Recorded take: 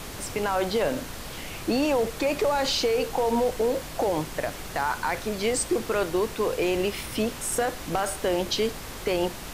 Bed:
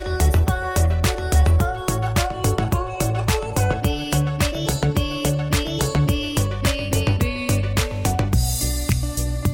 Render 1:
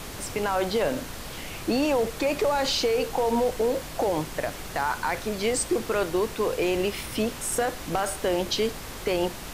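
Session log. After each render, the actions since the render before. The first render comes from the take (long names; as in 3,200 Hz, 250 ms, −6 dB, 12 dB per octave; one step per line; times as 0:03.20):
no processing that can be heard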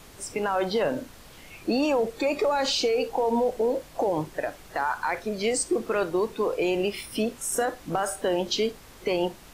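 noise reduction from a noise print 11 dB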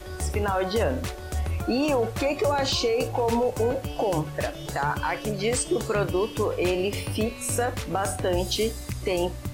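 mix in bed −12.5 dB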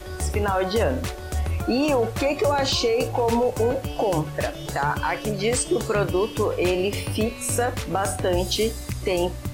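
level +2.5 dB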